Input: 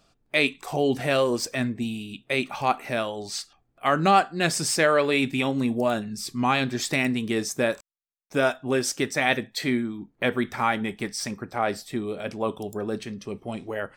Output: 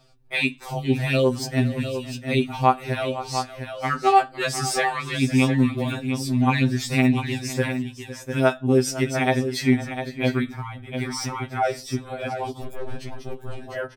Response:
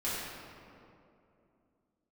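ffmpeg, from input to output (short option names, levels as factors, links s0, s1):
-filter_complex "[0:a]aecho=1:1:508|702:0.15|0.316,asettb=1/sr,asplit=3[s0][s1][s2];[s0]atrim=end=10.514[s3];[s1]atrim=start=10.51:end=10.94,asetpts=PTS-STARTPTS,afade=t=in:d=0.004:c=qsin,afade=t=out:st=0.426:d=0.004:c=qsin,acrossover=split=140[s4][s5];[s5]acompressor=threshold=0.00355:ratio=2[s6];[s4][s6]amix=inputs=2:normalize=0[s7];[s2]atrim=start=10.936[s8];[s3][s7]acrossfade=d=0.004:c1=hsin:c2=qsin[s9];[s9][s8]acrossfade=d=0.004:c1=qsin:c2=hsin,asettb=1/sr,asplit=3[s10][s11][s12];[s10]atrim=end=12.624[s13];[s11]atrim=start=12.62:end=13.64,asetpts=PTS-STARTPTS,afade=t=in:d=0.004:c=qsin,afade=t=out:st=1.016:d=0.004:c=qsin,aeval=exprs='(tanh(25.1*val(0)+0.65)-tanh(0.65))/25.1':c=same[s14];[s12]atrim=start=13.636[s15];[s13][s14]acrossfade=d=0.004:c1=hsin:c2=qsin[s16];[s16][s15]acrossfade=d=0.004:c1=qsin:c2=hsin,lowshelf=f=160:g=7.5,asplit=2[s17][s18];[s18]acompressor=threshold=0.0178:ratio=6,volume=0.944[s19];[s17][s19]amix=inputs=2:normalize=0,equalizer=f=7300:t=o:w=0.31:g=-3.5,afftfilt=real='re*2.45*eq(mod(b,6),0)':imag='im*2.45*eq(mod(b,6),0)':win_size=2048:overlap=0.75"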